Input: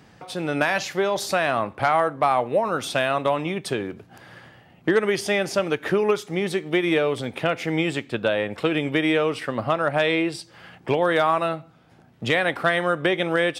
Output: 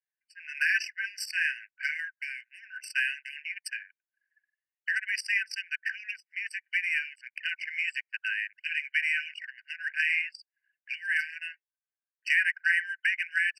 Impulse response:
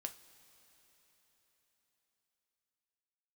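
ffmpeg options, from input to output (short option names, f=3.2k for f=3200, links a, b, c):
-af "asuperstop=centerf=1200:order=20:qfactor=2.8,aphaser=in_gain=1:out_gain=1:delay=4.5:decay=0.32:speed=1.5:type=triangular,anlmdn=63.1,afftfilt=real='re*eq(mod(floor(b*sr/1024/1500),2),1)':imag='im*eq(mod(floor(b*sr/1024/1500),2),1)':win_size=1024:overlap=0.75"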